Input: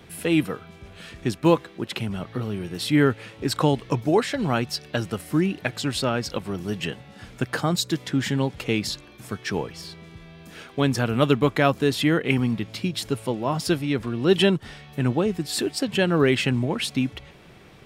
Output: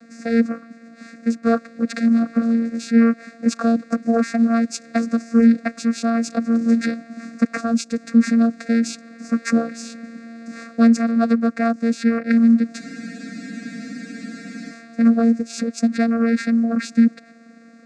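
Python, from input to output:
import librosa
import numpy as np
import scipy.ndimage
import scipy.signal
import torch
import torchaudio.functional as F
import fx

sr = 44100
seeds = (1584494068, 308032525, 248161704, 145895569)

y = fx.high_shelf(x, sr, hz=3000.0, db=11.0)
y = fx.rider(y, sr, range_db=5, speed_s=0.5)
y = fx.vocoder(y, sr, bands=8, carrier='saw', carrier_hz=230.0)
y = fx.fixed_phaser(y, sr, hz=620.0, stages=8)
y = fx.spec_freeze(y, sr, seeds[0], at_s=12.82, hold_s=1.88)
y = y * 10.0 ** (7.0 / 20.0)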